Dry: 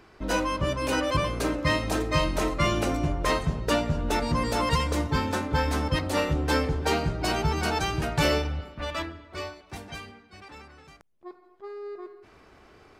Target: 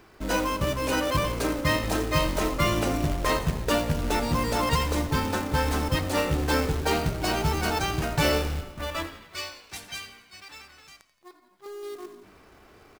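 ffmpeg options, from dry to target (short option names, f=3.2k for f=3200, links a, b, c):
-filter_complex "[0:a]asettb=1/sr,asplit=3[a][b][c];[a]atrim=end=9.074[d];[b]atrim=start=9.07:end=11.66,asetpts=PTS-STARTPTS,afade=t=in:d=0.004:c=qsin,afade=t=out:st=2.586:d=0.004:c=qsin,tiltshelf=f=1.5k:g=-9.5[e];[c]atrim=start=11.656[f];[d][e]acrossfade=d=0.004:c1=hsin:c2=qsin[g];[g][f]acrossfade=d=0.004:c1=qsin:c2=hsin,acrusher=bits=3:mode=log:mix=0:aa=0.000001,asplit=6[h][i][j][k][l][m];[i]adelay=86,afreqshift=-55,volume=-15.5dB[n];[j]adelay=172,afreqshift=-110,volume=-20.5dB[o];[k]adelay=258,afreqshift=-165,volume=-25.6dB[p];[l]adelay=344,afreqshift=-220,volume=-30.6dB[q];[m]adelay=430,afreqshift=-275,volume=-35.6dB[r];[h][n][o][p][q][r]amix=inputs=6:normalize=0"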